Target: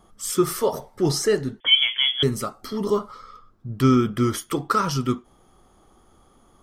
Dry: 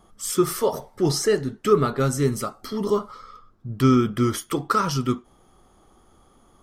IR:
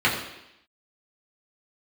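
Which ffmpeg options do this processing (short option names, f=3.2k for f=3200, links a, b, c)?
-filter_complex "[0:a]asettb=1/sr,asplit=3[a][b][c];[a]atrim=end=1.604[d];[b]atrim=start=1.6:end=2.23,asetpts=PTS-STARTPTS,afade=t=in:d=0.004:c=qsin,afade=t=out:st=0.626:d=0.004:c=qsin,lowpass=f=3k:t=q:w=0.5098,lowpass=f=3k:t=q:w=0.6013,lowpass=f=3k:t=q:w=0.9,lowpass=f=3k:t=q:w=2.563,afreqshift=-3500[e];[c]atrim=start=2.226[f];[d][e]acrossfade=d=0.004:c1=hsin:c2=qsin[g];[g][f]acrossfade=d=0.004:c1=qsin:c2=hsin"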